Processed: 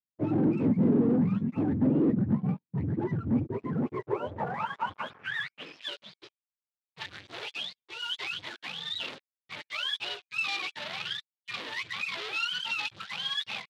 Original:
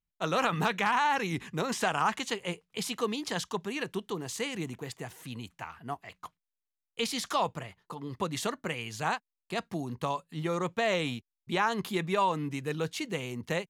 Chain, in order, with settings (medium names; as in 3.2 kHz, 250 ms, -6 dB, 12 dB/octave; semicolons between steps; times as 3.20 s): spectrum inverted on a logarithmic axis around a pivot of 640 Hz; waveshaping leveller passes 5; band-pass sweep 240 Hz -> 3.7 kHz, 3.54–5.94 s